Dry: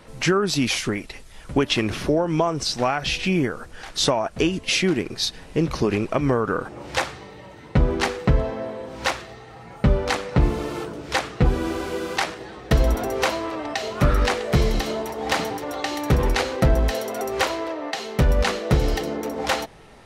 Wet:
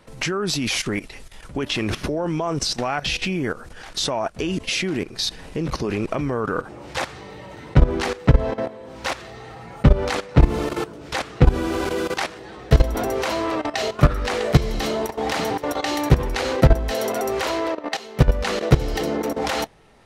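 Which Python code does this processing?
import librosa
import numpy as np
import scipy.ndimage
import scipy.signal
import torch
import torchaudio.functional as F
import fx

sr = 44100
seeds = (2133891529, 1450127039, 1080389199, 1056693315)

y = fx.level_steps(x, sr, step_db=15)
y = y * librosa.db_to_amplitude(6.5)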